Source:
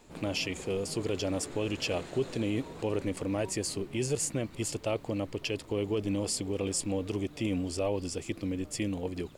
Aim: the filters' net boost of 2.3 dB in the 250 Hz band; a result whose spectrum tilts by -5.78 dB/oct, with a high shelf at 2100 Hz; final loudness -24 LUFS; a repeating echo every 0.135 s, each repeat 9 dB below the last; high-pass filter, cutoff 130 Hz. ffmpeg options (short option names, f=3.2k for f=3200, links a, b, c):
-af "highpass=130,equalizer=f=250:t=o:g=3.5,highshelf=f=2.1k:g=-8.5,aecho=1:1:135|270|405|540:0.355|0.124|0.0435|0.0152,volume=8.5dB"